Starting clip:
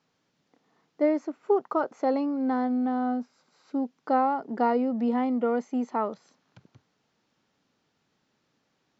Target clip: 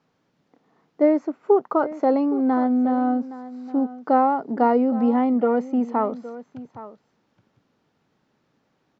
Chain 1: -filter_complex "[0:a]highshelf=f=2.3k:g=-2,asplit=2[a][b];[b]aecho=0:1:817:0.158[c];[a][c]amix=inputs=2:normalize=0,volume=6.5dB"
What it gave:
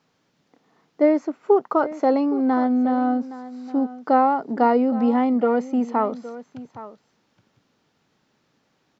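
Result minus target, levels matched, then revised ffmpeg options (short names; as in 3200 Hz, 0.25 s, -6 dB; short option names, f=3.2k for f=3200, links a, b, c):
4000 Hz band +5.5 dB
-filter_complex "[0:a]highshelf=f=2.3k:g=-10.5,asplit=2[a][b];[b]aecho=0:1:817:0.158[c];[a][c]amix=inputs=2:normalize=0,volume=6.5dB"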